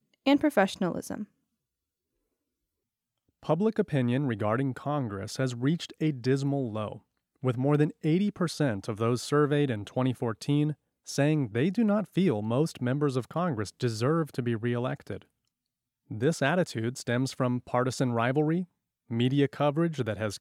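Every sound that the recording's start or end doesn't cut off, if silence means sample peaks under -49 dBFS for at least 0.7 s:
3.43–15.22 s

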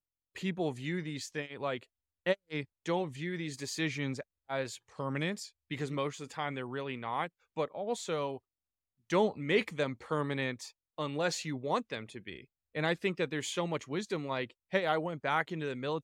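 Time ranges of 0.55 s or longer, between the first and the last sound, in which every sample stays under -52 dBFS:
8.38–9.10 s

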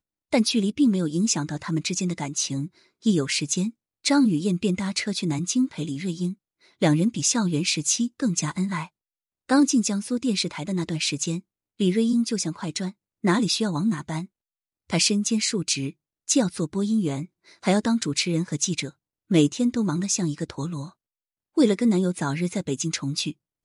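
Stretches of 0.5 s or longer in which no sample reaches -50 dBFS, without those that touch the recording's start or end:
8.88–9.49 s
14.26–14.90 s
20.92–21.57 s

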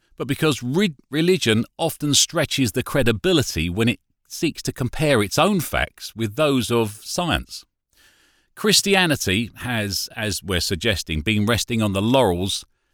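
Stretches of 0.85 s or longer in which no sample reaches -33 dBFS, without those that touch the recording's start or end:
7.60–8.57 s

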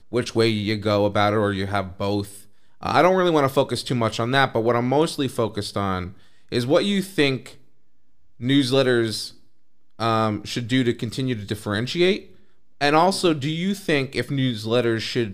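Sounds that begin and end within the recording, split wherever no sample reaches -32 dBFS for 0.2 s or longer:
2.83–6.10 s
6.52–7.49 s
8.41–9.29 s
9.99–12.19 s

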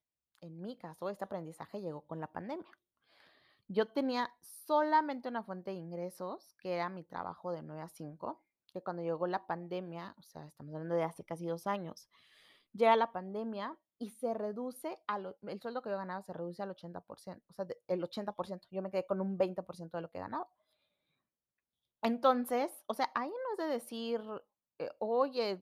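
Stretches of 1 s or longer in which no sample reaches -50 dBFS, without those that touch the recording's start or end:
20.45–22.03 s

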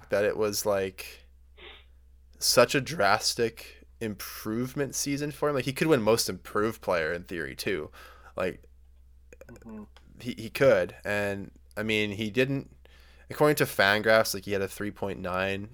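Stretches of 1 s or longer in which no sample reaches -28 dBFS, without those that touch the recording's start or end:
1.01–2.42 s
8.50–10.26 s

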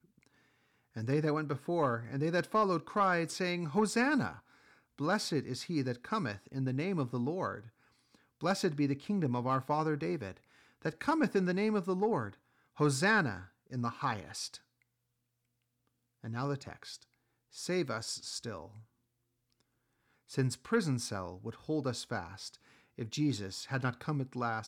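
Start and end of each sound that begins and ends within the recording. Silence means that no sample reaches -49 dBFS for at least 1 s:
16.24–18.81 s

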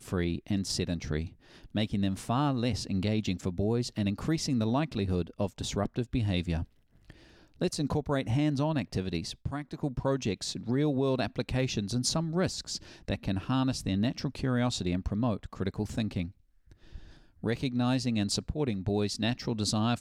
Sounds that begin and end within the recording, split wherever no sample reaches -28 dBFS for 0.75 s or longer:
7.61–16.23 s

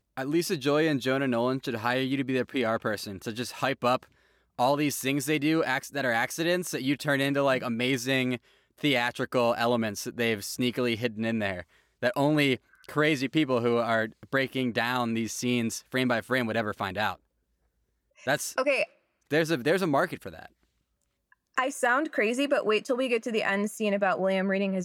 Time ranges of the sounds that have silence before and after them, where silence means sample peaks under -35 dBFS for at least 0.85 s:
18.27–20.46 s

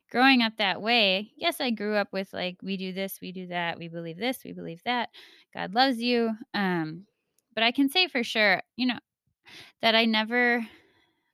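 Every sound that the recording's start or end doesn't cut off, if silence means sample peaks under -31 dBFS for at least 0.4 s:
5.57–6.91 s
7.57–8.98 s
9.83–10.64 s

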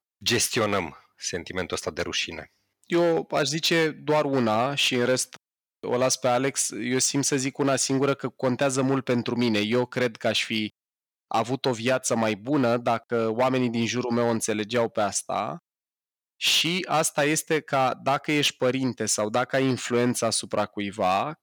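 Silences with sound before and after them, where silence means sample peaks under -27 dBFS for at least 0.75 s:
15.54–16.42 s

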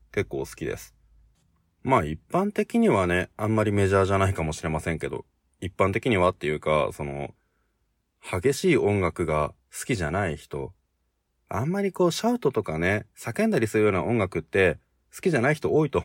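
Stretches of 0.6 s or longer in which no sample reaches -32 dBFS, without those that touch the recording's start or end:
0.83–1.85 s
7.26–8.27 s
10.66–11.51 s

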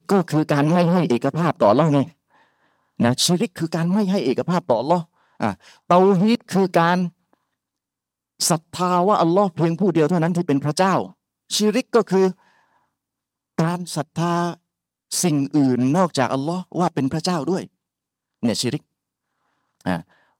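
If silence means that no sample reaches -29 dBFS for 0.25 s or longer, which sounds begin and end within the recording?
3.00–5.02 s
5.40–5.54 s
5.90–7.08 s
8.40–11.07 s
11.51–12.31 s
13.59–14.54 s
15.12–17.64 s
18.43–18.77 s
19.86–20.00 s

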